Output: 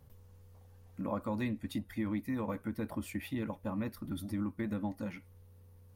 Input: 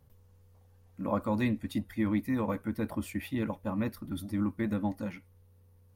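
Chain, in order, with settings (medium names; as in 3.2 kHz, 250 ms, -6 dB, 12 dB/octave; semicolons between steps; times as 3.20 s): compression 2:1, threshold -42 dBFS, peak gain reduction 9.5 dB; trim +3 dB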